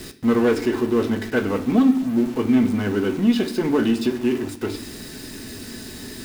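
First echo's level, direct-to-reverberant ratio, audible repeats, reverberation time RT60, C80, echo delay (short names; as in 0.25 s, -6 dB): none, 6.0 dB, none, 0.65 s, 16.5 dB, none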